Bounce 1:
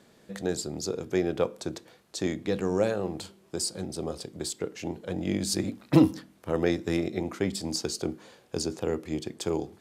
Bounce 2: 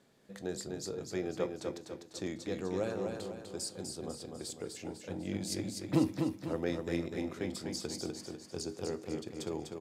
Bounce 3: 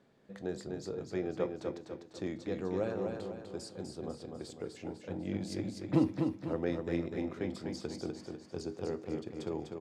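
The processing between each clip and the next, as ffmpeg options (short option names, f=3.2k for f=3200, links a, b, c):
-filter_complex "[0:a]flanger=delay=7.3:depth=2.6:regen=81:speed=0.29:shape=triangular,asplit=2[a][b];[b]aecho=0:1:249|498|747|996|1245|1494:0.562|0.253|0.114|0.0512|0.0231|0.0104[c];[a][c]amix=inputs=2:normalize=0,volume=-4.5dB"
-af "aemphasis=mode=reproduction:type=75fm"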